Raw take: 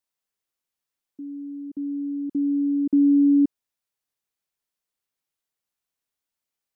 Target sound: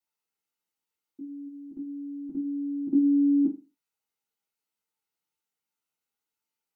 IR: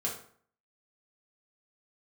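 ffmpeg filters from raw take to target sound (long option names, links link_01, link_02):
-filter_complex "[0:a]asplit=3[link_01][link_02][link_03];[link_01]afade=type=out:start_time=1.46:duration=0.02[link_04];[link_02]asubboost=boost=9.5:cutoff=100,afade=type=in:start_time=1.46:duration=0.02,afade=type=out:start_time=2.9:duration=0.02[link_05];[link_03]afade=type=in:start_time=2.9:duration=0.02[link_06];[link_04][link_05][link_06]amix=inputs=3:normalize=0[link_07];[1:a]atrim=start_sample=2205,asetrate=83790,aresample=44100[link_08];[link_07][link_08]afir=irnorm=-1:irlink=0"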